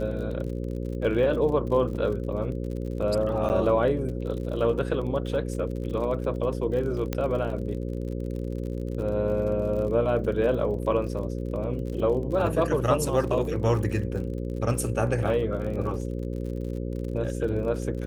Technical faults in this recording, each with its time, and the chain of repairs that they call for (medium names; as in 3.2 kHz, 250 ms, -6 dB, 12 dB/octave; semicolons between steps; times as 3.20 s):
buzz 60 Hz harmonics 9 -31 dBFS
crackle 48 per s -35 dBFS
3.49–3.50 s: dropout 9.1 ms
7.13 s: pop -13 dBFS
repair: de-click; de-hum 60 Hz, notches 9; interpolate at 3.49 s, 9.1 ms